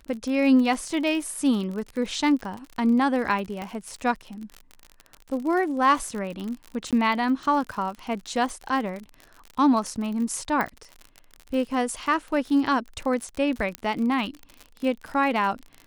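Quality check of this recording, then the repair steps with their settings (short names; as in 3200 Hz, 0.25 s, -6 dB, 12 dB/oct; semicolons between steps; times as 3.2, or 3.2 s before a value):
crackle 52/s -31 dBFS
3.62 pop -19 dBFS
6.91–6.93 gap 17 ms
10.61 pop -13 dBFS
13.75 pop -14 dBFS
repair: de-click; interpolate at 6.91, 17 ms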